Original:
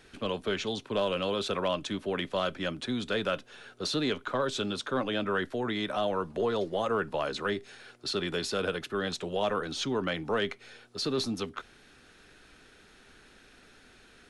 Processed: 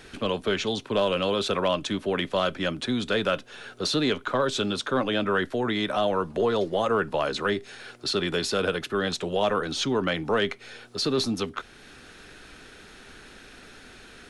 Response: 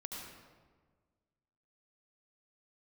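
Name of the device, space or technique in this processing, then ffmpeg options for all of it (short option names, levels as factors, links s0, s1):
parallel compression: -filter_complex "[0:a]asplit=2[s0][s1];[s1]acompressor=threshold=0.00355:ratio=6,volume=0.708[s2];[s0][s2]amix=inputs=2:normalize=0,volume=1.68"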